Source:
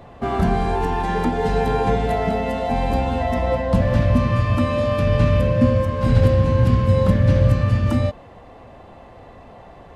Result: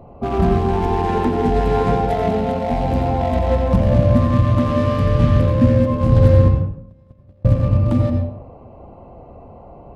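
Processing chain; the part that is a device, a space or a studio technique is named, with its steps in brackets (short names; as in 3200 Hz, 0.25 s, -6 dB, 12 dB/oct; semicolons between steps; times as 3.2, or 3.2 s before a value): Wiener smoothing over 25 samples; 6.48–7.45 gate -8 dBFS, range -40 dB; bathroom (reverb RT60 0.70 s, pre-delay 79 ms, DRR 3 dB); gain +2 dB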